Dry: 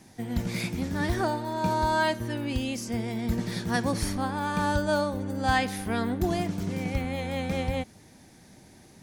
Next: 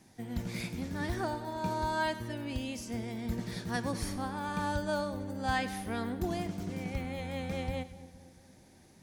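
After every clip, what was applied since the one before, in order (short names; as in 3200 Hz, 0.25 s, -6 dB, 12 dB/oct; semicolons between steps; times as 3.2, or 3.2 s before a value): split-band echo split 840 Hz, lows 0.229 s, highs 99 ms, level -15 dB; gain -7 dB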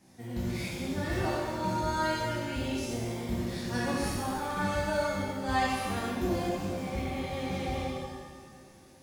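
shimmer reverb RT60 1.4 s, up +7 st, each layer -8 dB, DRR -6.5 dB; gain -4.5 dB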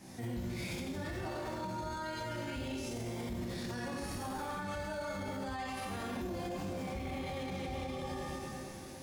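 compressor, threshold -37 dBFS, peak gain reduction 13.5 dB; limiter -39.5 dBFS, peak gain reduction 11.5 dB; gain +8 dB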